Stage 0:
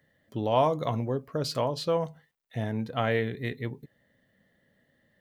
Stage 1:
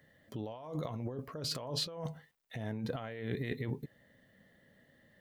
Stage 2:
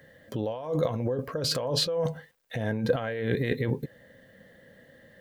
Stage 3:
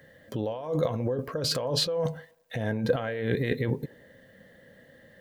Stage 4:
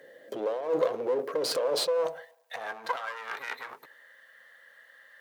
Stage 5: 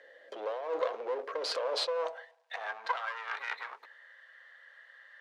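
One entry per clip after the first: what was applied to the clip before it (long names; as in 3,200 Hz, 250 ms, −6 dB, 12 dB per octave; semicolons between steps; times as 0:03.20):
compressor whose output falls as the input rises −36 dBFS, ratio −1; level −3.5 dB
hollow resonant body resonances 510/1,600 Hz, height 10 dB, ringing for 45 ms; level +8.5 dB
delay with a band-pass on its return 89 ms, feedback 49%, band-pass 570 Hz, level −20.5 dB
asymmetric clip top −36.5 dBFS; high-pass filter sweep 410 Hz → 1,200 Hz, 0:01.46–0:03.30
band-pass filter 680–4,600 Hz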